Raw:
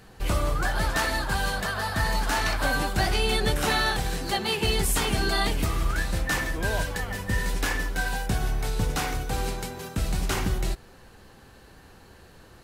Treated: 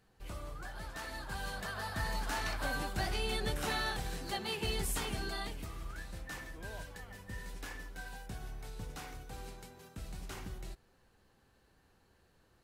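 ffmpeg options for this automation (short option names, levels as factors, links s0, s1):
-af "volume=0.282,afade=t=in:st=0.95:d=0.84:silence=0.398107,afade=t=out:st=4.9:d=0.73:silence=0.446684"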